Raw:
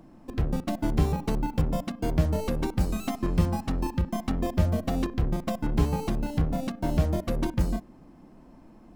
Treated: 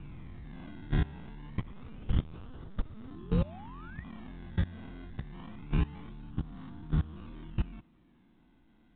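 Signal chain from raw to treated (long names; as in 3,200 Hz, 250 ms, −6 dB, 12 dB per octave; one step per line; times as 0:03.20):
peak hold with a rise ahead of every peak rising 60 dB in 1.43 s
phaser with its sweep stopped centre 2,200 Hz, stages 6
0:01.60–0:03.11: linear-prediction vocoder at 8 kHz pitch kept
sample-and-hold swept by an LFO 17×, swing 100% 0.26 Hz
tape delay 204 ms, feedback 80%, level −18 dB, low-pass 1,800 Hz
0:02.96–0:04.04: sound drawn into the spectrogram rise 210–2,000 Hz −31 dBFS
output level in coarse steps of 20 dB
level −4.5 dB
mu-law 64 kbit/s 8,000 Hz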